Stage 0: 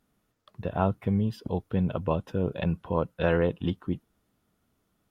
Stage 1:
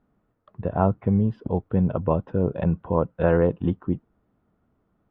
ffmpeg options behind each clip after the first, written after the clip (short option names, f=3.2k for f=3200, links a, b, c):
-af "lowpass=1.3k,volume=5dB"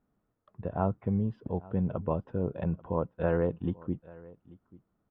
-af "aecho=1:1:838:0.0841,volume=-8dB"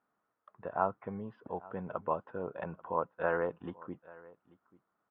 -af "bandpass=f=1.3k:t=q:w=1.3:csg=0,volume=6dB"